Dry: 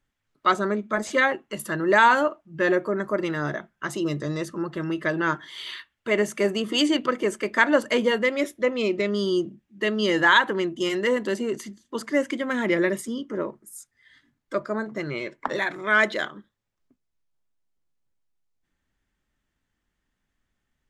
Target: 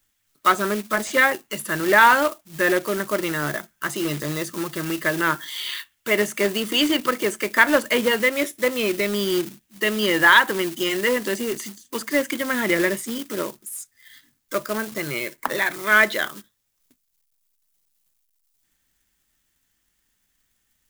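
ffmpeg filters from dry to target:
-filter_complex "[0:a]acrusher=bits=3:mode=log:mix=0:aa=0.000001,crystalizer=i=5.5:c=0,acrossover=split=3000[a][b];[b]acompressor=threshold=-30dB:ratio=4:attack=1:release=60[c];[a][c]amix=inputs=2:normalize=0"

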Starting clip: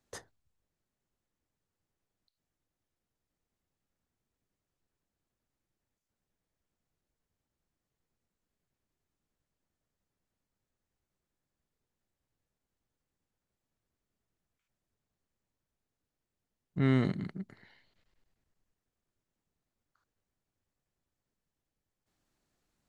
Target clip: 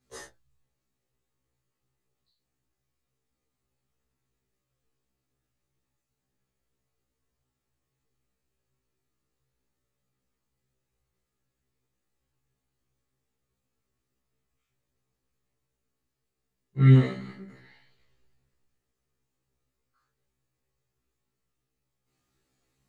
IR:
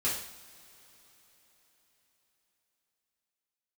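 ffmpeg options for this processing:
-filter_complex "[0:a]asettb=1/sr,asplit=3[a][b][c];[a]atrim=end=16.944[d];[b]atrim=start=16.94:end=17.47,asetpts=PTS-STARTPTS,afade=t=in:d=0.004:c=qsin,afade=t=out:st=0.526:d=0.004:c=qsin,equalizer=f=110:t=o:w=2.6:g=-12[e];[c]atrim=start=17.466[f];[d][e]acrossfade=d=0.004:c1=hsin:c2=qsin[g];[g][f]acrossfade=d=0.004:c1=qsin:c2=hsin[h];[1:a]atrim=start_sample=2205,afade=t=out:st=0.15:d=0.01,atrim=end_sample=7056[i];[h][i]afir=irnorm=-1:irlink=0,afftfilt=real='re*1.73*eq(mod(b,3),0)':imag='im*1.73*eq(mod(b,3),0)':win_size=2048:overlap=0.75"

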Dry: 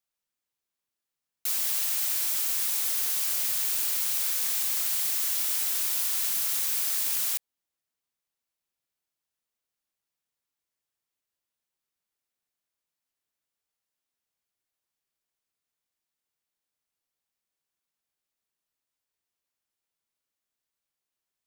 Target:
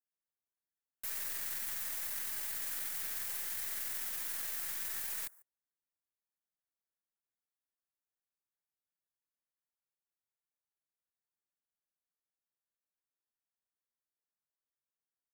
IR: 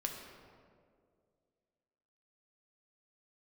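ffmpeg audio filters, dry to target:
-filter_complex "[0:a]equalizer=f=1.8k:t=o:w=0.79:g=12.5,flanger=delay=4.8:depth=3.5:regen=-65:speed=1:shape=triangular,atempo=1.4,asplit=2[a][b];[b]adelay=145.8,volume=-19dB,highshelf=f=4k:g=-3.28[c];[a][c]amix=inputs=2:normalize=0,acrossover=split=100|1400|7600[d][e][f][g];[f]acrusher=bits=4:dc=4:mix=0:aa=0.000001[h];[d][e][h][g]amix=inputs=4:normalize=0,volume=-6.5dB"

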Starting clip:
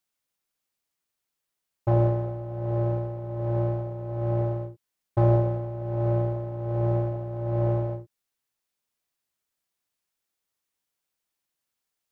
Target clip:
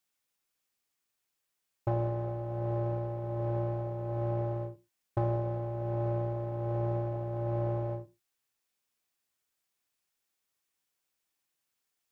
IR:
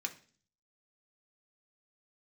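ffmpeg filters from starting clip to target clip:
-filter_complex "[0:a]acompressor=threshold=-29dB:ratio=3,asplit=2[a][b];[1:a]atrim=start_sample=2205,atrim=end_sample=6174[c];[b][c]afir=irnorm=-1:irlink=0,volume=-6dB[d];[a][d]amix=inputs=2:normalize=0,volume=-2.5dB"

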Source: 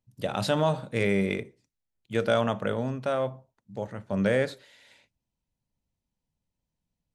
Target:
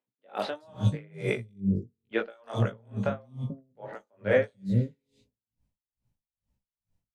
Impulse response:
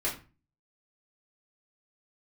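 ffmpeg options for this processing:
-filter_complex "[0:a]lowshelf=f=270:g=7,acrossover=split=320|3600[a][b][c];[c]adelay=180[d];[a]adelay=440[e];[e][b][d]amix=inputs=3:normalize=0,flanger=delay=16:depth=3.8:speed=1.5,highshelf=f=4.9k:g=-4.5,bandreject=f=46.05:t=h:w=4,bandreject=f=92.1:t=h:w=4,bandreject=f=138.15:t=h:w=4,bandreject=f=184.2:t=h:w=4,bandreject=f=230.25:t=h:w=4,bandreject=f=276.3:t=h:w=4,bandreject=f=322.35:t=h:w=4,bandreject=f=368.4:t=h:w=4,bandreject=f=414.45:t=h:w=4,bandreject=f=460.5:t=h:w=4,bandreject=f=506.55:t=h:w=4,bandreject=f=552.6:t=h:w=4,bandreject=f=598.65:t=h:w=4,bandreject=f=644.7:t=h:w=4,bandreject=f=690.75:t=h:w=4,bandreject=f=736.8:t=h:w=4,bandreject=f=782.85:t=h:w=4,bandreject=f=828.9:t=h:w=4,bandreject=f=874.95:t=h:w=4,bandreject=f=921:t=h:w=4,bandreject=f=967.05:t=h:w=4,bandreject=f=1.0131k:t=h:w=4,bandreject=f=1.05915k:t=h:w=4,bandreject=f=1.1052k:t=h:w=4,bandreject=f=1.15125k:t=h:w=4,bandreject=f=1.1973k:t=h:w=4,bandreject=f=1.24335k:t=h:w=4,bandreject=f=1.2894k:t=h:w=4,aeval=exprs='val(0)*pow(10,-37*(0.5-0.5*cos(2*PI*2.3*n/s))/20)':c=same,volume=7.5dB"

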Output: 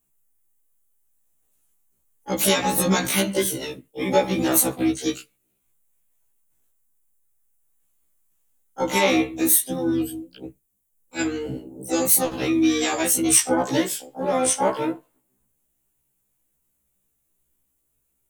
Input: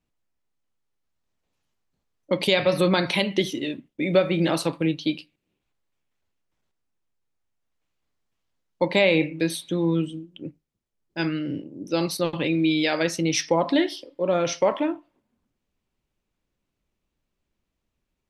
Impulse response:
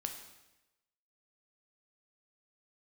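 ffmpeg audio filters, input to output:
-filter_complex "[0:a]asplit=4[a][b][c][d];[b]asetrate=22050,aresample=44100,atempo=2,volume=-10dB[e];[c]asetrate=35002,aresample=44100,atempo=1.25992,volume=-16dB[f];[d]asetrate=66075,aresample=44100,atempo=0.66742,volume=-6dB[g];[a][e][f][g]amix=inputs=4:normalize=0,aexciter=amount=11.4:drive=4.2:freq=7.1k,afftfilt=real='re*1.73*eq(mod(b,3),0)':imag='im*1.73*eq(mod(b,3),0)':win_size=2048:overlap=0.75,volume=1dB"

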